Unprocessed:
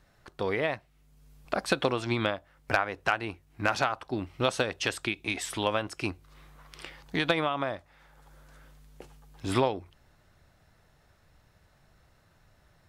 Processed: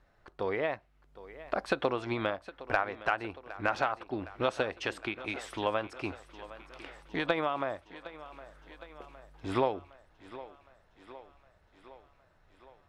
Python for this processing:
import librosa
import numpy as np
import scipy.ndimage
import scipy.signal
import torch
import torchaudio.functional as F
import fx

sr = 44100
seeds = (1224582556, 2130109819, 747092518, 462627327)

p1 = fx.lowpass(x, sr, hz=1500.0, slope=6)
p2 = fx.peak_eq(p1, sr, hz=140.0, db=-8.0, octaves=2.0)
y = p2 + fx.echo_thinned(p2, sr, ms=762, feedback_pct=65, hz=190.0, wet_db=-16.0, dry=0)